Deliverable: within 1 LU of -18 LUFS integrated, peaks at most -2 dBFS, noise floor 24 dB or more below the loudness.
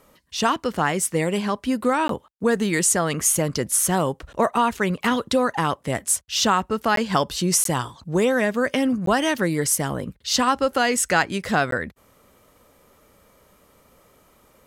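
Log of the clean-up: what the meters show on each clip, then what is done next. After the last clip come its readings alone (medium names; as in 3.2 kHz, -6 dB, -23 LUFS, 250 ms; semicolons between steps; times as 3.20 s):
dropouts 5; longest dropout 13 ms; loudness -22.0 LUFS; peak level -6.0 dBFS; loudness target -18.0 LUFS
-> interpolate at 2.08/6.96/7.64/9.06/11.71 s, 13 ms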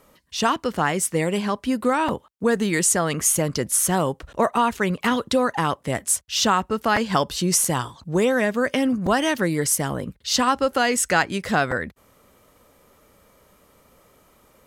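dropouts 0; loudness -21.5 LUFS; peak level -6.0 dBFS; loudness target -18.0 LUFS
-> trim +3.5 dB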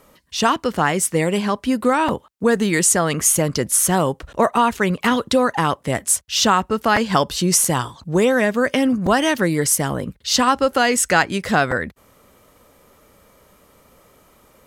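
loudness -18.0 LUFS; peak level -2.5 dBFS; noise floor -55 dBFS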